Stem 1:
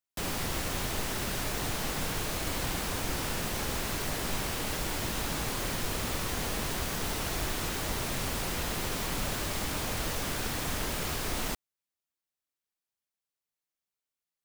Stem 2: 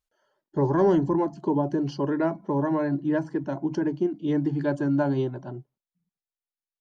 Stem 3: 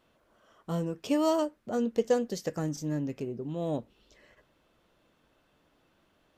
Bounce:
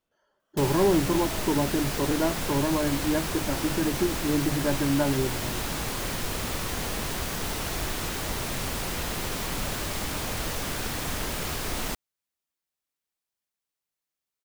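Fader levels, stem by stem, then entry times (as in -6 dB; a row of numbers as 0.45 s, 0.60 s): +2.0 dB, -1.5 dB, -15.5 dB; 0.40 s, 0.00 s, 0.00 s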